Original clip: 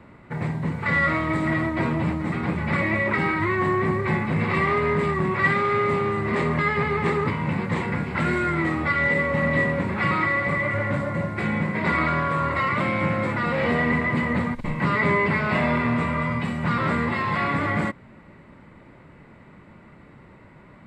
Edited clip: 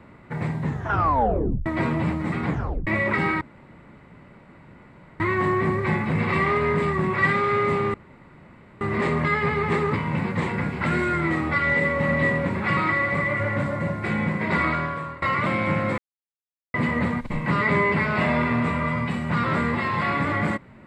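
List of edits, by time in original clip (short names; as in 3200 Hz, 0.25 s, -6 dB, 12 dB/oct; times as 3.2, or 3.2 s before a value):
0.62 tape stop 1.04 s
2.48 tape stop 0.39 s
3.41 insert room tone 1.79 s
6.15 insert room tone 0.87 s
11.96–12.56 fade out, to -18.5 dB
13.32–14.08 mute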